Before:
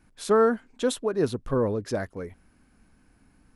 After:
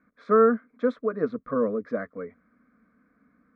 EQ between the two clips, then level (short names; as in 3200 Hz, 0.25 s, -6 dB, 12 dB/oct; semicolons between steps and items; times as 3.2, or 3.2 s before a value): speaker cabinet 110–3000 Hz, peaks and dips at 120 Hz +6 dB, 230 Hz +5 dB, 430 Hz +10 dB, 1200 Hz +9 dB, 2200 Hz +7 dB; fixed phaser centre 570 Hz, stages 8; -2.5 dB